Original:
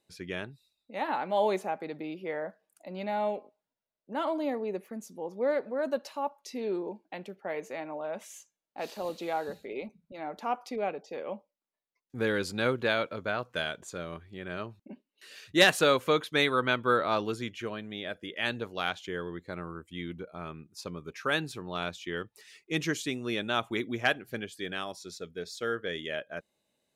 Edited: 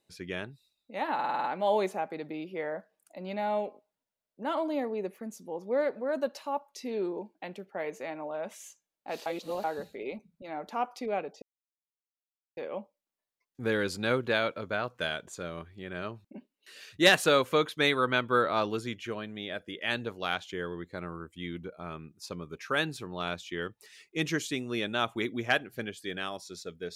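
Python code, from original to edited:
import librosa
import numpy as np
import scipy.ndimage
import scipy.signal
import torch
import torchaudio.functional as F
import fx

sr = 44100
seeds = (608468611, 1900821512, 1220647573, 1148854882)

y = fx.edit(x, sr, fx.stutter(start_s=1.14, slice_s=0.05, count=7),
    fx.reverse_span(start_s=8.96, length_s=0.38),
    fx.insert_silence(at_s=11.12, length_s=1.15), tone=tone)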